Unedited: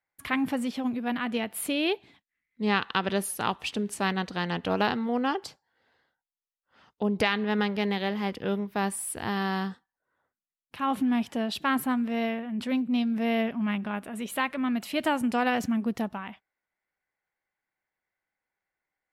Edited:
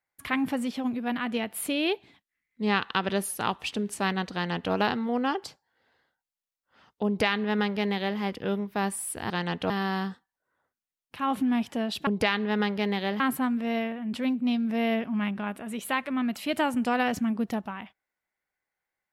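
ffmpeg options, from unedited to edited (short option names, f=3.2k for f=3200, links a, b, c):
-filter_complex "[0:a]asplit=5[a][b][c][d][e];[a]atrim=end=9.302[f];[b]atrim=start=4.328:end=4.732[g];[c]atrim=start=9.298:end=11.672[h];[d]atrim=start=7.058:end=8.192[i];[e]atrim=start=11.668[j];[f][g]acrossfade=d=0.004:c1=hsin:c2=hsin[k];[k][h]acrossfade=d=0.004:c1=hsin:c2=hsin[l];[l][i]acrossfade=d=0.004:c1=hsin:c2=hsin[m];[m][j]acrossfade=d=0.004:c1=hsin:c2=hsin"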